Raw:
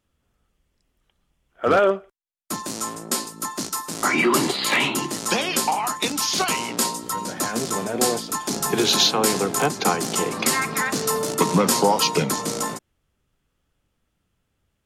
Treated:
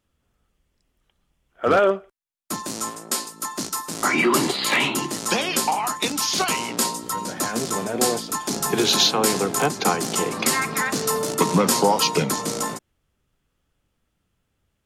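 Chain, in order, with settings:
0:02.90–0:03.51: low-shelf EQ 330 Hz −8.5 dB

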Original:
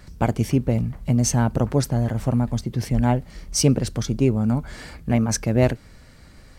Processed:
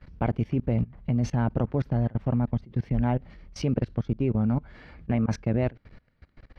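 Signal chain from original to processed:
parametric band 2,500 Hz +2.5 dB 1.1 octaves
output level in coarse steps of 23 dB
high-frequency loss of the air 310 metres

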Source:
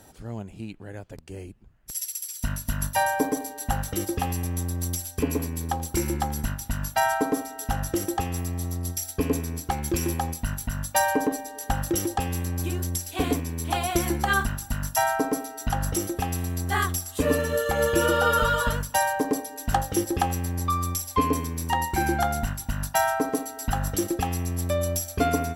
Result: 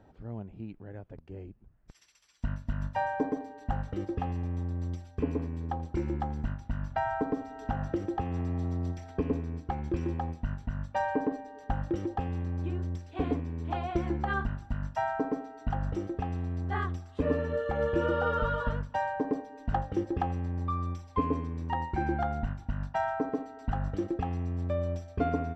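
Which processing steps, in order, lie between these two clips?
head-to-tape spacing loss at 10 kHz 41 dB
0:06.90–0:09.31: multiband upward and downward compressor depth 70%
level −3.5 dB

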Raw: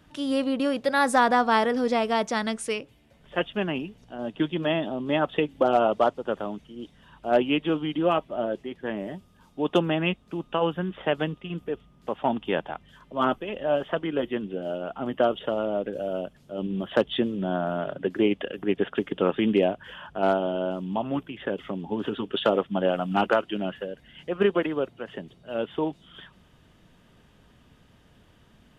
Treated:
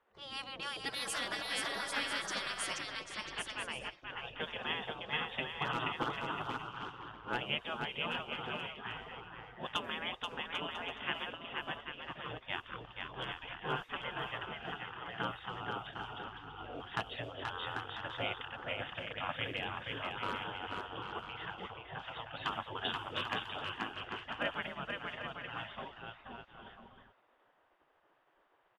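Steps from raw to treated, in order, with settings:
bouncing-ball delay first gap 480 ms, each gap 0.65×, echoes 5
gate on every frequency bin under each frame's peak −15 dB weak
low-pass that shuts in the quiet parts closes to 1,200 Hz, open at −31.5 dBFS
level −4 dB

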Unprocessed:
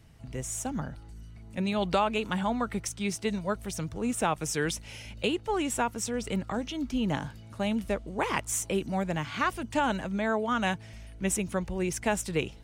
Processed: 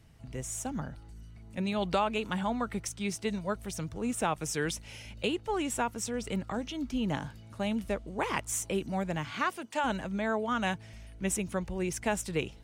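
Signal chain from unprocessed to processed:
0:09.32–0:09.83: high-pass filter 130 Hz → 530 Hz 12 dB per octave
level −2.5 dB

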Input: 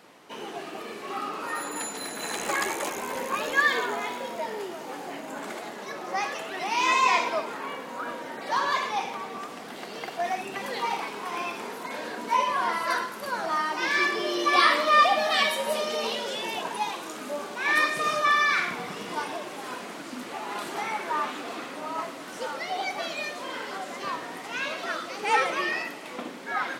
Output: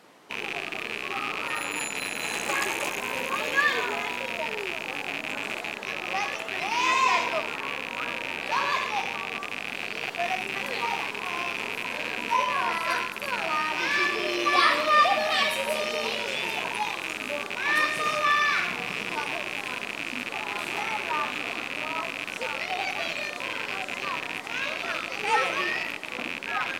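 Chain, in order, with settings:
loose part that buzzes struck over −49 dBFS, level −17 dBFS
level −1 dB
Opus 256 kbit/s 48,000 Hz

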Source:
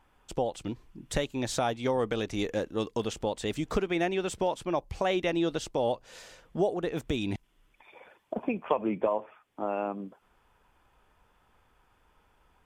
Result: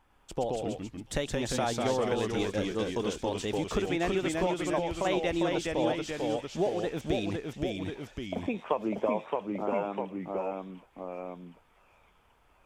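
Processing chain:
delay with a high-pass on its return 690 ms, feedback 57%, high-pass 2,500 Hz, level −11.5 dB
delay with pitch and tempo change per echo 103 ms, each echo −1 semitone, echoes 2
level −2 dB

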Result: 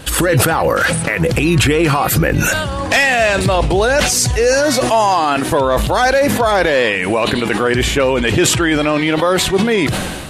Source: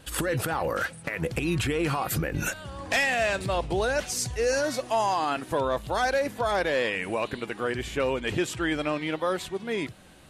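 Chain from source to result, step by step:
boost into a limiter +21.5 dB
level that may fall only so fast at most 36 dB per second
level −4.5 dB

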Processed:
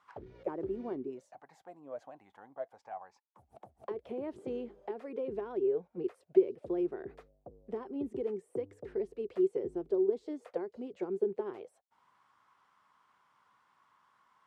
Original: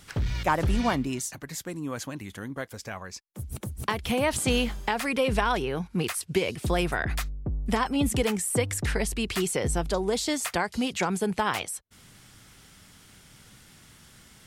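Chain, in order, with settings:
envelope filter 380–1,100 Hz, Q 9.2, down, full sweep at −23.5 dBFS
level +4 dB

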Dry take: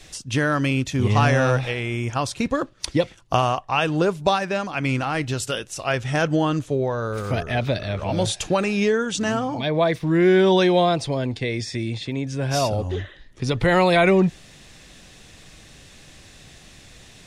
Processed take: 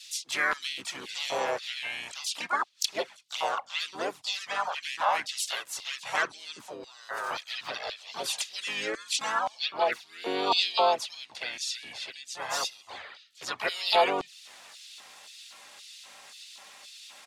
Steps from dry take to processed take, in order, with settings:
high-pass filter 48 Hz 24 dB per octave
in parallel at −2 dB: downward compressor 5 to 1, threshold −28 dBFS, peak gain reduction 14 dB
on the sum: flanger swept by the level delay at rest 4.2 ms, full sweep at −12 dBFS
mains hum 50 Hz, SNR 17 dB
auto-filter high-pass square 1.9 Hz 870–3,700 Hz
pitch-shifted copies added −5 semitones −6 dB, +4 semitones −3 dB
level −6.5 dB

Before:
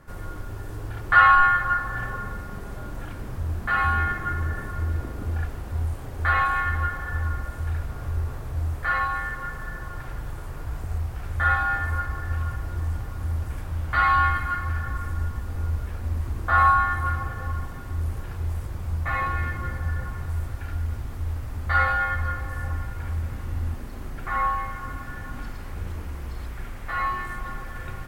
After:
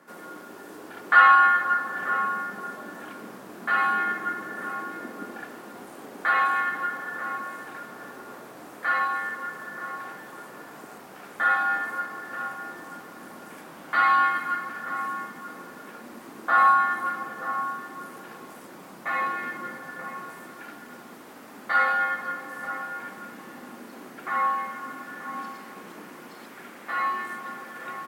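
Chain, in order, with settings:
Butterworth high-pass 200 Hz 36 dB per octave
slap from a distant wall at 160 metres, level −10 dB

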